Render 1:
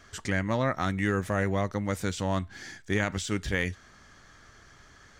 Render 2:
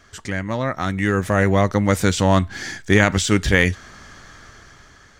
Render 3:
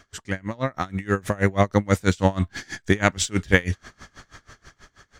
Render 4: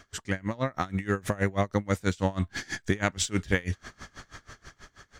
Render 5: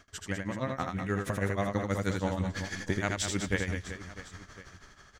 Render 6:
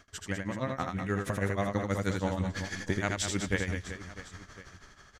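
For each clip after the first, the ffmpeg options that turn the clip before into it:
-af "dynaudnorm=f=370:g=7:m=11dB,volume=2.5dB"
-af "aeval=exprs='val(0)*pow(10,-26*(0.5-0.5*cos(2*PI*6.2*n/s))/20)':c=same,volume=1.5dB"
-af "acompressor=threshold=-24dB:ratio=3"
-af "aecho=1:1:80|200|380|650|1055:0.631|0.398|0.251|0.158|0.1,volume=-5dB"
-af "aresample=32000,aresample=44100"

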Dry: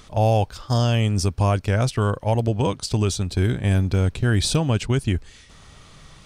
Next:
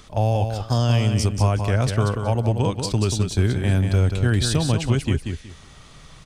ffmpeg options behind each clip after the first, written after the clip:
-filter_complex "[0:a]acrossover=split=190[a][b];[b]acompressor=threshold=-20dB:ratio=6[c];[a][c]amix=inputs=2:normalize=0,aecho=1:1:185|370|555:0.473|0.104|0.0229"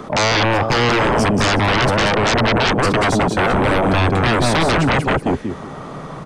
-filter_complex "[0:a]acrossover=split=160|1300|2000[a][b][c][d];[a]acompressor=threshold=-29dB:ratio=6[e];[b]aeval=exprs='0.237*sin(PI/2*8.91*val(0)/0.237)':c=same[f];[e][f][c][d]amix=inputs=4:normalize=0"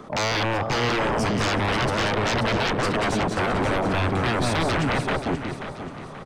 -filter_complex "[0:a]asplit=2[a][b];[b]aecho=0:1:532|1064|1596|2128:0.355|0.142|0.0568|0.0227[c];[a][c]amix=inputs=2:normalize=0,aeval=exprs='0.501*(cos(1*acos(clip(val(0)/0.501,-1,1)))-cos(1*PI/2))+0.0112*(cos(7*acos(clip(val(0)/0.501,-1,1)))-cos(7*PI/2))':c=same,volume=-8dB"

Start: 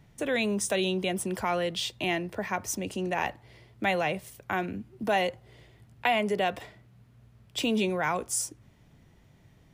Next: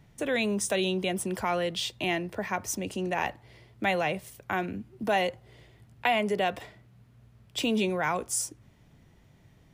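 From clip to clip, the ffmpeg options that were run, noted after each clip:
-af anull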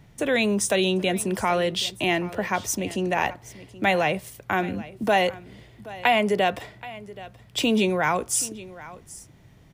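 -af "aecho=1:1:777:0.126,volume=5.5dB"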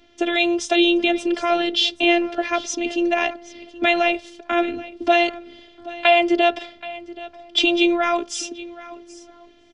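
-filter_complex "[0:a]highpass=150,equalizer=f=980:t=q:w=4:g=-10,equalizer=f=1.9k:t=q:w=4:g=-4,equalizer=f=3.2k:t=q:w=4:g=6,lowpass=f=5.5k:w=0.5412,lowpass=f=5.5k:w=1.3066,afftfilt=real='hypot(re,im)*cos(PI*b)':imag='0':win_size=512:overlap=0.75,asplit=2[a][b];[b]adelay=1283,volume=-27dB,highshelf=f=4k:g=-28.9[c];[a][c]amix=inputs=2:normalize=0,volume=8.5dB"

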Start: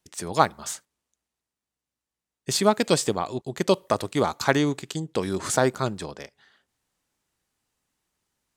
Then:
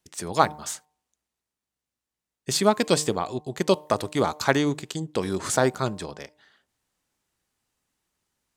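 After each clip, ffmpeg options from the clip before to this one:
-af "bandreject=f=151.2:t=h:w=4,bandreject=f=302.4:t=h:w=4,bandreject=f=453.6:t=h:w=4,bandreject=f=604.8:t=h:w=4,bandreject=f=756:t=h:w=4,bandreject=f=907.2:t=h:w=4,bandreject=f=1.0584k:t=h:w=4"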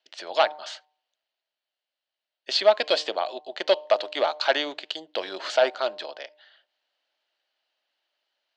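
-af "asoftclip=type=hard:threshold=-13dB,highpass=f=420:w=0.5412,highpass=f=420:w=1.3066,equalizer=f=430:t=q:w=4:g=-8,equalizer=f=620:t=q:w=4:g=9,equalizer=f=1.1k:t=q:w=4:g=-5,equalizer=f=1.6k:t=q:w=4:g=3,equalizer=f=3k:t=q:w=4:g=9,equalizer=f=4.3k:t=q:w=4:g=7,lowpass=f=4.6k:w=0.5412,lowpass=f=4.6k:w=1.3066"

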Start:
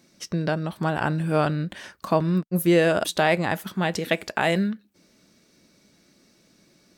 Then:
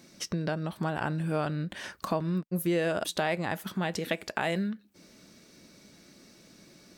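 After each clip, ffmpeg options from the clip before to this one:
-af "acompressor=threshold=-40dB:ratio=2,volume=4dB"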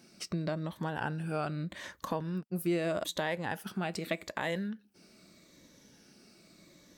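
-af "afftfilt=real='re*pow(10,7/40*sin(2*PI*(1.1*log(max(b,1)*sr/1024/100)/log(2)-(-0.81)*(pts-256)/sr)))':imag='im*pow(10,7/40*sin(2*PI*(1.1*log(max(b,1)*sr/1024/100)/log(2)-(-0.81)*(pts-256)/sr)))':win_size=1024:overlap=0.75,volume=-4.5dB"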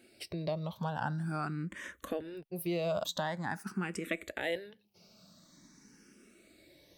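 -filter_complex "[0:a]asplit=2[a][b];[b]afreqshift=0.46[c];[a][c]amix=inputs=2:normalize=1,volume=1.5dB"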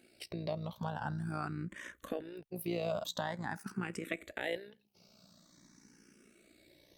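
-af "tremolo=f=59:d=0.621"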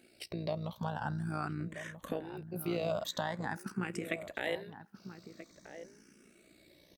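-filter_complex "[0:a]asplit=2[a][b];[b]adelay=1283,volume=-11dB,highshelf=f=4k:g=-28.9[c];[a][c]amix=inputs=2:normalize=0,volume=1.5dB"

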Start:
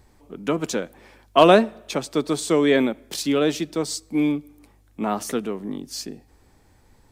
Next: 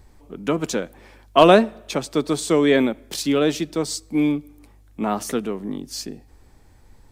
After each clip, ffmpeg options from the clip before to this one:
-af "lowshelf=f=63:g=9,volume=1dB"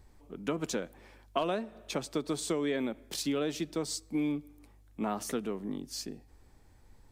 -af "acompressor=threshold=-19dB:ratio=16,volume=-8dB"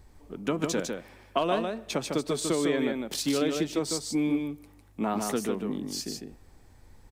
-af "aecho=1:1:152:0.596,volume=4dB"

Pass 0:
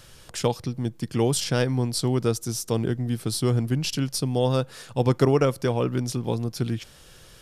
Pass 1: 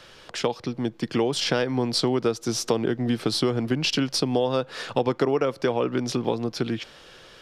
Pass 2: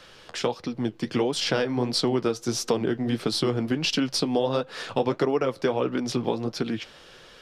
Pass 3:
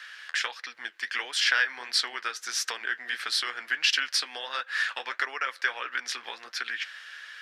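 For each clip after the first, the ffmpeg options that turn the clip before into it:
-filter_complex "[0:a]dynaudnorm=f=240:g=11:m=11.5dB,acrossover=split=230 5100:gain=0.2 1 0.112[a][b][c];[a][b][c]amix=inputs=3:normalize=0,acompressor=threshold=-26dB:ratio=5,volume=5.5dB"
-af "flanger=delay=3.8:depth=8.6:regen=-52:speed=1.5:shape=sinusoidal,volume=3dB"
-af "highpass=f=1.7k:t=q:w=4.7"

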